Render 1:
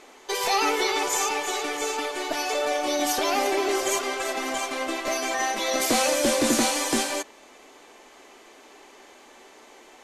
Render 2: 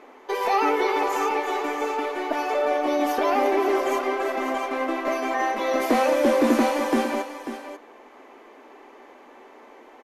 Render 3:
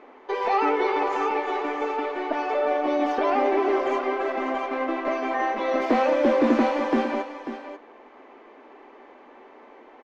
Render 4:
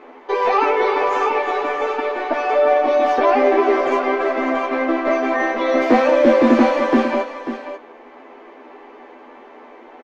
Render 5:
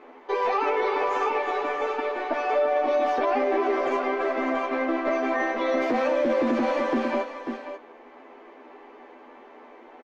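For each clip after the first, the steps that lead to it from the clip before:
graphic EQ 125/250/500/1000/2000/4000/8000 Hz -9/+10/+6/+7/+4/-4/-12 dB; on a send: echo 0.542 s -10.5 dB; on the sum: gain -5 dB
air absorption 180 m
doubler 12 ms -2.5 dB; gain +5 dB
limiter -9.5 dBFS, peak gain reduction 8 dB; gain -6 dB

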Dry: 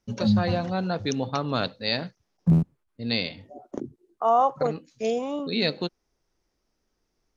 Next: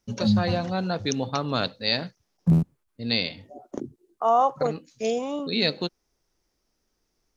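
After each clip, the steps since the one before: high shelf 4600 Hz +6.5 dB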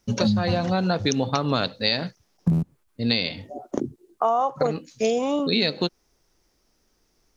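compressor 12:1, threshold -25 dBFS, peak gain reduction 11.5 dB; gain +7.5 dB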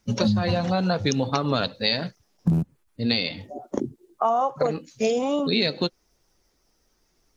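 bin magnitudes rounded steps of 15 dB

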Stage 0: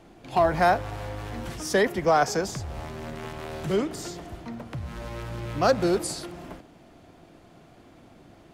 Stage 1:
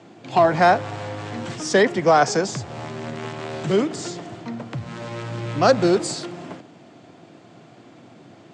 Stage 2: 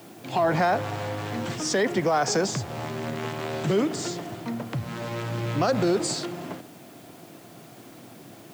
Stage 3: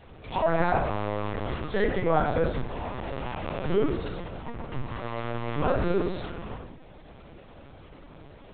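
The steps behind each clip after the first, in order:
Chebyshev band-pass 110–7900 Hz, order 4; gain +6 dB
limiter -14.5 dBFS, peak gain reduction 10.5 dB; added noise white -55 dBFS
reverb RT60 0.60 s, pre-delay 6 ms, DRR -2 dB; LPC vocoder at 8 kHz pitch kept; gain -6 dB

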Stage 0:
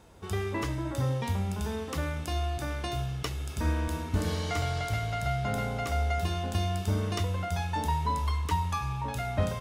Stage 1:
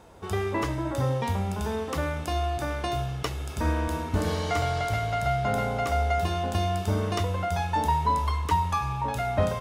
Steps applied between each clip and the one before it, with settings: bell 730 Hz +6 dB 2.3 oct; gain +1 dB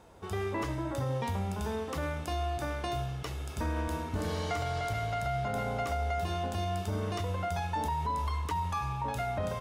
limiter -19.5 dBFS, peak gain reduction 7 dB; gain -4.5 dB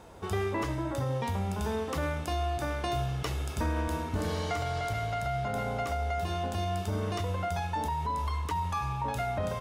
vocal rider 0.5 s; gain +1.5 dB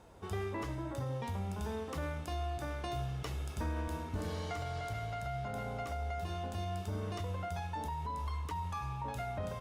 low shelf 170 Hz +3 dB; gain -8 dB; Opus 64 kbps 48000 Hz

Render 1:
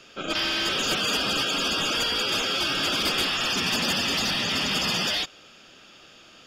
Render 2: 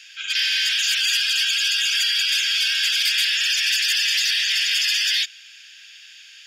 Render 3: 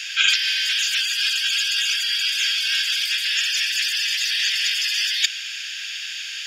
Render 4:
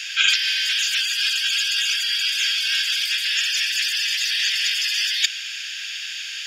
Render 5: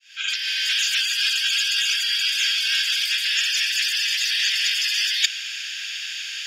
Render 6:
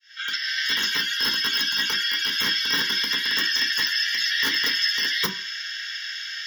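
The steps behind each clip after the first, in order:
Chebyshev high-pass 1600 Hz, order 6; in parallel at -3 dB: limiter -23.5 dBFS, peak gain reduction 7 dB; on the sum: gain +3.5 dB
negative-ratio compressor -26 dBFS, ratio -0.5; gain +6.5 dB
nothing audible
opening faded in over 0.72 s
wrapped overs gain 13 dB; fixed phaser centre 2500 Hz, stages 6; reverb RT60 0.40 s, pre-delay 3 ms, DRR -1 dB; gain -3.5 dB

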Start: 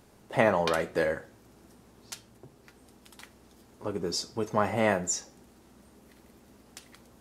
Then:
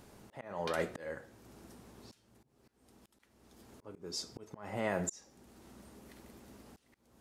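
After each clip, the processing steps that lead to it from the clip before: limiter -18 dBFS, peak gain reduction 9 dB; auto swell 0.59 s; gain +1 dB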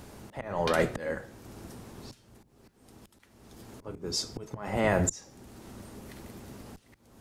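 octaver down 1 oct, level -3 dB; gain +8.5 dB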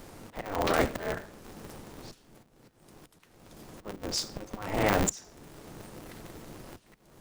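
polarity switched at an audio rate 100 Hz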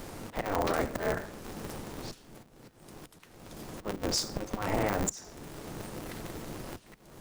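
dynamic EQ 3100 Hz, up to -5 dB, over -46 dBFS, Q 1.2; compressor 10:1, threshold -30 dBFS, peak gain reduction 10.5 dB; gain +5 dB

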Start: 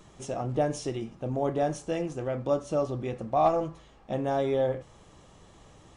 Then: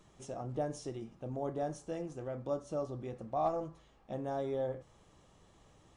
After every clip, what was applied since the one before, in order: dynamic EQ 2600 Hz, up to -7 dB, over -52 dBFS, Q 1.5; gain -9 dB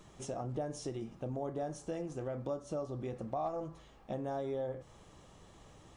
compressor 3:1, threshold -42 dBFS, peak gain reduction 11 dB; gain +5.5 dB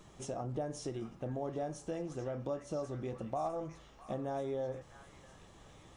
delay with a stepping band-pass 0.655 s, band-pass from 1700 Hz, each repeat 0.7 oct, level -5 dB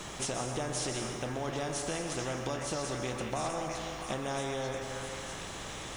on a send at -7.5 dB: reverb RT60 1.4 s, pre-delay 0.117 s; on the sum: spectral compressor 2:1; gain +4.5 dB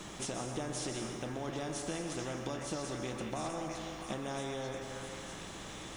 small resonant body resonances 200/310/3500 Hz, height 6 dB; gain -5 dB

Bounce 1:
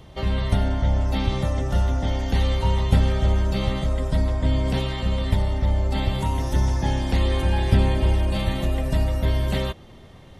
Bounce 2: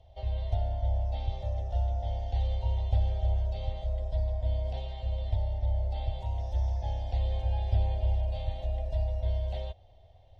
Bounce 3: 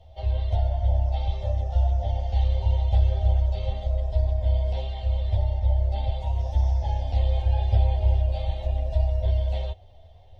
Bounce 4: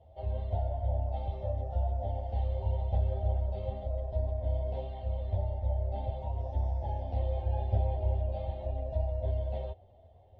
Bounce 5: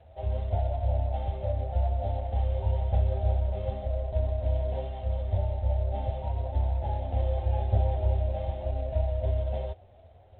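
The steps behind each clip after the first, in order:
EQ curve 100 Hz 0 dB, 150 Hz -22 dB, 340 Hz -21 dB, 700 Hz +4 dB, 1200 Hz -23 dB, 3400 Hz -8 dB, 5700 Hz -13 dB, 9200 Hz -27 dB; gain -7.5 dB
ensemble effect; gain +9 dB
band-pass 310 Hz, Q 0.61
gain +4 dB; G.726 24 kbps 8000 Hz

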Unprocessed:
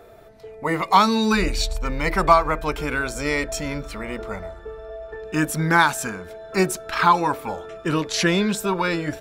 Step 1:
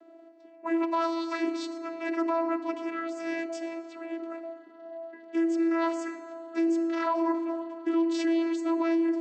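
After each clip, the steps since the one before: vocoder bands 16, saw 331 Hz; FDN reverb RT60 2.8 s, high-frequency decay 0.45×, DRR 9.5 dB; limiter -14.5 dBFS, peak gain reduction 10 dB; gain -5.5 dB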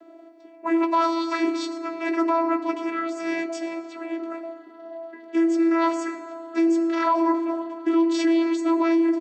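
doubler 16 ms -10 dB; gain +6 dB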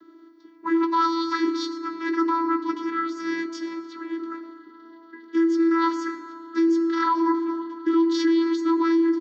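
fixed phaser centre 2500 Hz, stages 6; gain +3 dB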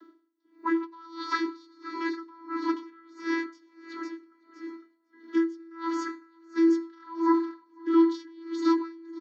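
Chebyshev high-pass 210 Hz, order 8; feedback echo 0.505 s, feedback 42%, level -10.5 dB; dB-linear tremolo 1.5 Hz, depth 28 dB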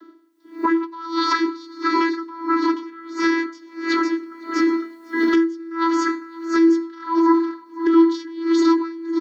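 recorder AGC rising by 29 dB/s; gain +6.5 dB

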